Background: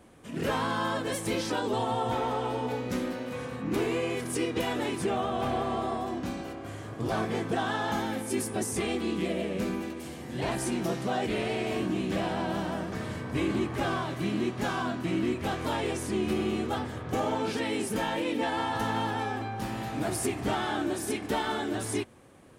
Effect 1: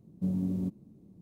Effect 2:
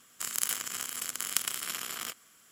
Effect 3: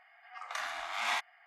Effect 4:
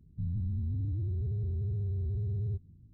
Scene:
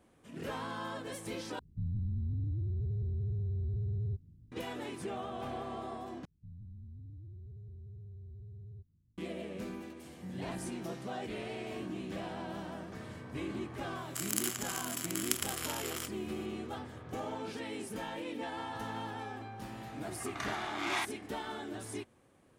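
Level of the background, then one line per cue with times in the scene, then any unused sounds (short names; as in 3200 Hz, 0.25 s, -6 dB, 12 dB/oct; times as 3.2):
background -10.5 dB
1.59 replace with 4 -2 dB
6.25 replace with 4 -16 dB
10.01 add 1 -14 dB
13.95 add 2 -3.5 dB + vibrato 1 Hz 27 cents
19.85 add 3 -2 dB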